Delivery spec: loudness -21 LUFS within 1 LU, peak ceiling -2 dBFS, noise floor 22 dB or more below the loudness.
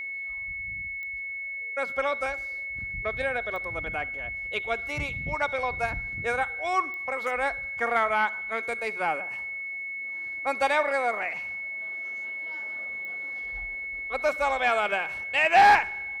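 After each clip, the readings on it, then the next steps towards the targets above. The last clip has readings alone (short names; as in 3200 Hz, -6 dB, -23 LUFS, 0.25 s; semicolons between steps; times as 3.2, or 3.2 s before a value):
clicks 4; steady tone 2200 Hz; tone level -32 dBFS; loudness -27.5 LUFS; peak -9.5 dBFS; loudness target -21.0 LUFS
-> de-click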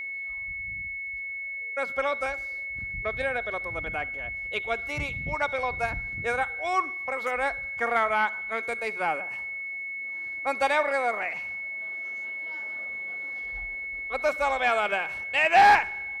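clicks 0; steady tone 2200 Hz; tone level -32 dBFS
-> notch 2200 Hz, Q 30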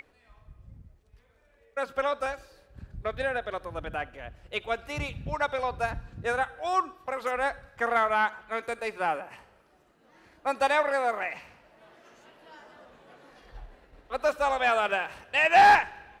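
steady tone none; loudness -27.5 LUFS; peak -10.0 dBFS; loudness target -21.0 LUFS
-> gain +6.5 dB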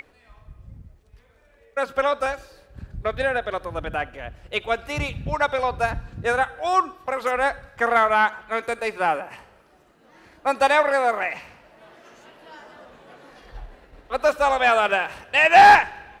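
loudness -21.0 LUFS; peak -3.5 dBFS; noise floor -57 dBFS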